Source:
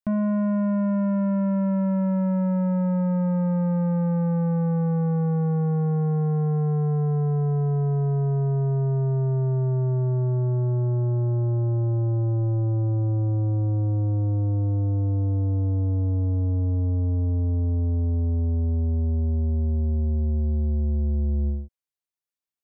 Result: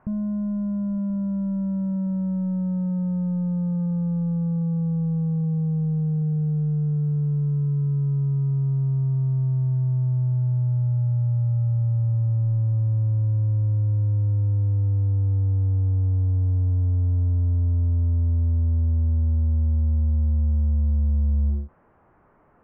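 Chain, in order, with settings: delta modulation 16 kbps, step -48.5 dBFS; LPF 1300 Hz 24 dB/oct; low shelf 320 Hz +5 dB; gain -1.5 dB

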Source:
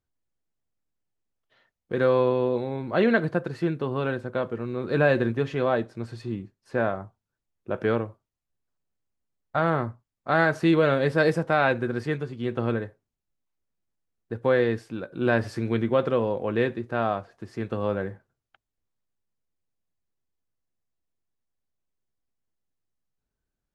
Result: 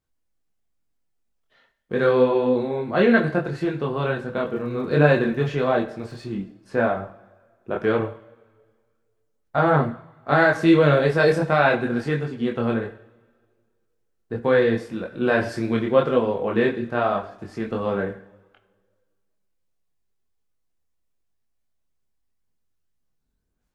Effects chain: two-slope reverb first 0.58 s, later 1.8 s, from -16 dB, DRR 9 dB; chorus voices 6, 0.88 Hz, delay 24 ms, depth 3.8 ms; 4.35–6.25 crackle 77/s -52 dBFS; gain +6.5 dB

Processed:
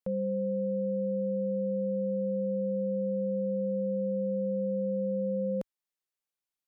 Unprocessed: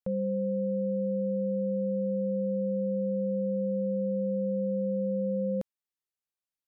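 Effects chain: bell 66 Hz -6.5 dB 2.2 oct

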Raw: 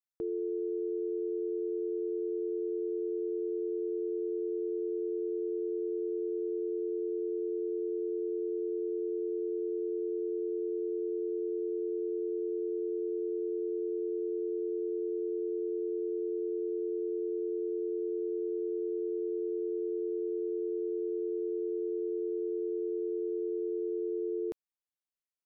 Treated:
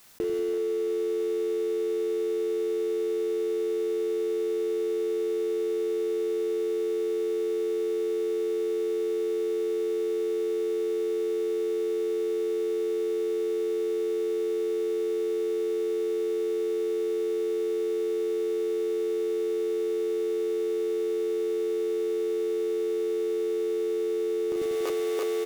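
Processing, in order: doubler 39 ms -6 dB; in parallel at -11 dB: bit-crush 6-bit; on the sum: split-band echo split 410 Hz, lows 95 ms, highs 0.335 s, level -4 dB; fast leveller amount 100%

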